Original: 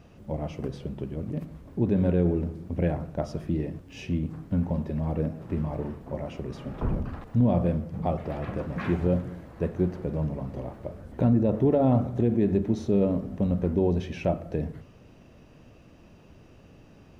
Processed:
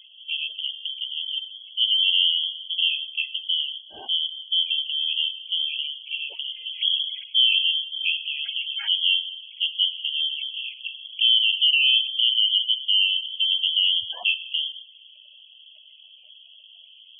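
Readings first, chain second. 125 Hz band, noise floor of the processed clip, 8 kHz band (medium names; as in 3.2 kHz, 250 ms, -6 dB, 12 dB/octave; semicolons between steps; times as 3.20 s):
under -40 dB, -50 dBFS, no reading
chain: frequency inversion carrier 3.3 kHz; spectral gate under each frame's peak -15 dB strong; trim +2.5 dB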